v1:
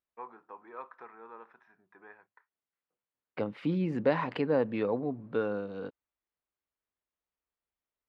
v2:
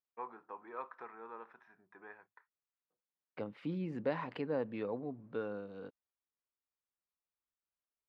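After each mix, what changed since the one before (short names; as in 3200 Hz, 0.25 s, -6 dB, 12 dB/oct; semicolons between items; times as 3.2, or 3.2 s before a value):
second voice -8.5 dB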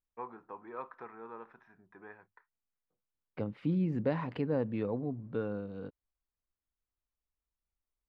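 master: remove HPF 480 Hz 6 dB/oct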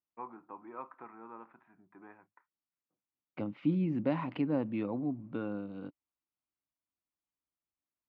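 second voice: remove air absorption 410 m; master: add speaker cabinet 140–2700 Hz, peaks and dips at 300 Hz +6 dB, 450 Hz -10 dB, 1700 Hz -8 dB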